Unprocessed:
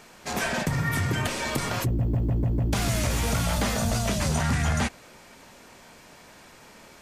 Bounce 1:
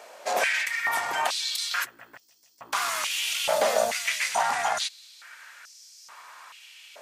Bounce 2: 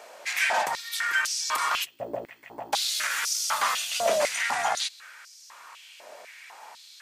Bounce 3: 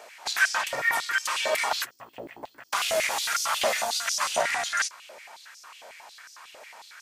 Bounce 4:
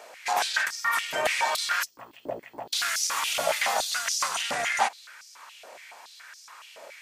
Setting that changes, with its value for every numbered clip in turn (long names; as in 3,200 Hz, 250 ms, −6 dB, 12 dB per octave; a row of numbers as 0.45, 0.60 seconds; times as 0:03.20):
high-pass on a step sequencer, speed: 2.3, 4, 11, 7.1 Hertz